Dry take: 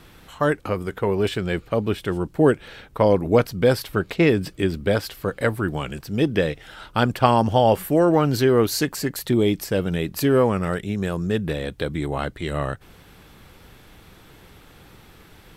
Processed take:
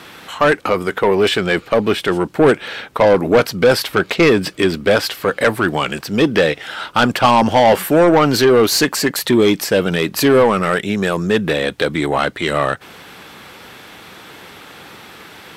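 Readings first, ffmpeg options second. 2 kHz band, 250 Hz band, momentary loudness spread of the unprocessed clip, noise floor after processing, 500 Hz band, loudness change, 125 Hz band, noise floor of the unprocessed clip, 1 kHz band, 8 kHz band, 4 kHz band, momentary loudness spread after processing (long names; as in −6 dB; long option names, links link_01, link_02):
+11.0 dB, +5.0 dB, 10 LU, −40 dBFS, +7.0 dB, +6.5 dB, +0.5 dB, −50 dBFS, +8.0 dB, +9.5 dB, +11.0 dB, 7 LU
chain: -filter_complex "[0:a]highpass=58,asplit=2[link_01][link_02];[link_02]highpass=frequency=720:poles=1,volume=22dB,asoftclip=type=tanh:threshold=-1dB[link_03];[link_01][link_03]amix=inputs=2:normalize=0,lowpass=frequency=5300:poles=1,volume=-6dB,equalizer=frequency=220:width_type=o:width=0.8:gain=3,volume=-1dB"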